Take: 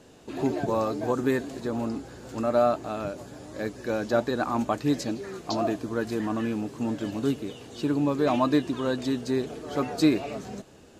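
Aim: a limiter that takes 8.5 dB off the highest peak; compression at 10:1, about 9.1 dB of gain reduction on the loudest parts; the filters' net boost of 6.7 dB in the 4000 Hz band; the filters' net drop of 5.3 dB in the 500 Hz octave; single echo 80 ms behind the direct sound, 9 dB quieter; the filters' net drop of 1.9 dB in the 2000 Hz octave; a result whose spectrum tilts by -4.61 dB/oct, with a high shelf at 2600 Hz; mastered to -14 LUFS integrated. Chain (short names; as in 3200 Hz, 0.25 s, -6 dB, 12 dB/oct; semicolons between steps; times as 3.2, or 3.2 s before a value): bell 500 Hz -7 dB; bell 2000 Hz -6 dB; high shelf 2600 Hz +7 dB; bell 4000 Hz +3.5 dB; compressor 10:1, threshold -27 dBFS; limiter -24.5 dBFS; echo 80 ms -9 dB; gain +21 dB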